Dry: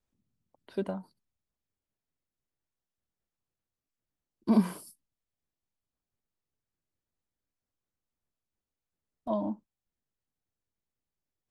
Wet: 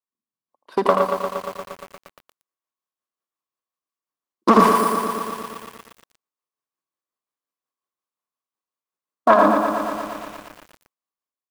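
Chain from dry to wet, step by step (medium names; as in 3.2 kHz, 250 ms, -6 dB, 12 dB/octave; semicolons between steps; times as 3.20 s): self-modulated delay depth 0.58 ms; gate -53 dBFS, range -19 dB; high-pass 340 Hz 12 dB/octave; peaking EQ 1.1 kHz +14 dB 0.32 oct; level rider gain up to 10 dB; waveshaping leveller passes 1; in parallel at +3 dB: compression 6:1, threshold -27 dBFS, peak gain reduction 15 dB; on the sum: tremolo 5.6 Hz, depth 56%; on a send: multi-tap echo 80/110 ms -7/-10.5 dB; on the sum: bit-crushed delay 117 ms, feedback 80%, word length 7-bit, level -6.5 dB; trim +3 dB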